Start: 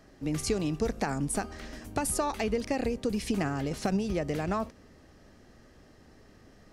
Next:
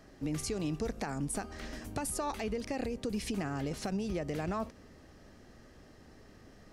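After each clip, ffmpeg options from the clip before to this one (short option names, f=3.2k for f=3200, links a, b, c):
-af "alimiter=level_in=2dB:limit=-24dB:level=0:latency=1:release=240,volume=-2dB"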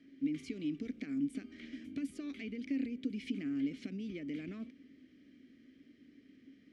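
-filter_complex "[0:a]asplit=3[a][b][c];[a]bandpass=f=270:t=q:w=8,volume=0dB[d];[b]bandpass=f=2.29k:t=q:w=8,volume=-6dB[e];[c]bandpass=f=3.01k:t=q:w=8,volume=-9dB[f];[d][e][f]amix=inputs=3:normalize=0,volume=6.5dB"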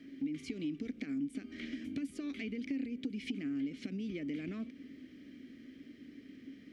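-af "acompressor=threshold=-47dB:ratio=2.5,volume=8dB"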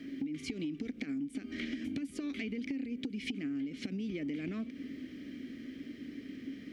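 -af "acompressor=threshold=-42dB:ratio=6,volume=7.5dB"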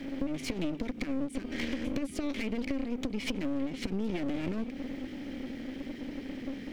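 -af "aeval=exprs='clip(val(0),-1,0.00355)':c=same,volume=7.5dB"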